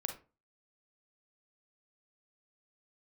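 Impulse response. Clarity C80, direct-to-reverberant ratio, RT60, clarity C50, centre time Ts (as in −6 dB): 15.5 dB, 4.5 dB, 0.35 s, 8.0 dB, 15 ms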